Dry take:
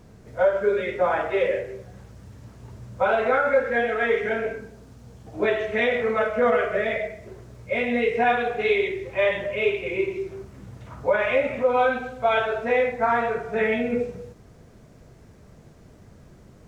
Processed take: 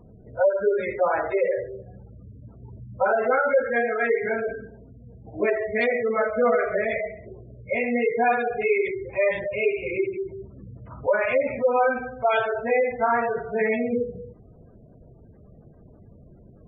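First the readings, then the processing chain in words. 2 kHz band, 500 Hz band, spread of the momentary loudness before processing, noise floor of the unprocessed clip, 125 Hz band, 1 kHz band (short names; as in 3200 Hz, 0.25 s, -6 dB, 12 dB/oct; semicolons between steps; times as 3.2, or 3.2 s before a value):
-1.5 dB, 0.0 dB, 16 LU, -50 dBFS, -2.0 dB, -0.5 dB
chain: self-modulated delay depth 0.053 ms; spectral gate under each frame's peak -20 dB strong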